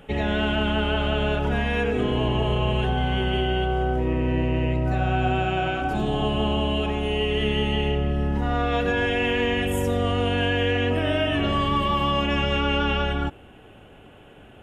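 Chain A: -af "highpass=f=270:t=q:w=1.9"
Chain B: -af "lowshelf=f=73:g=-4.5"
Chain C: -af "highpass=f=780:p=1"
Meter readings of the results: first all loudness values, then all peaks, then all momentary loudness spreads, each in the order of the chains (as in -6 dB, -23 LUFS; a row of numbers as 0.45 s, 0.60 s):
-22.5 LUFS, -24.0 LUFS, -28.0 LUFS; -10.0 dBFS, -11.5 dBFS, -14.5 dBFS; 4 LU, 3 LU, 7 LU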